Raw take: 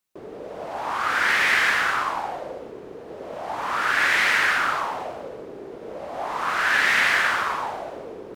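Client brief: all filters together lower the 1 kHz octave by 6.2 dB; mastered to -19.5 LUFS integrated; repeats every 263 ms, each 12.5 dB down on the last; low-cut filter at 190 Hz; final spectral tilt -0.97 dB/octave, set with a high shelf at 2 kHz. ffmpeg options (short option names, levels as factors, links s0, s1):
-af "highpass=190,equalizer=f=1000:t=o:g=-7.5,highshelf=f=2000:g=-3,aecho=1:1:263|526|789:0.237|0.0569|0.0137,volume=1.88"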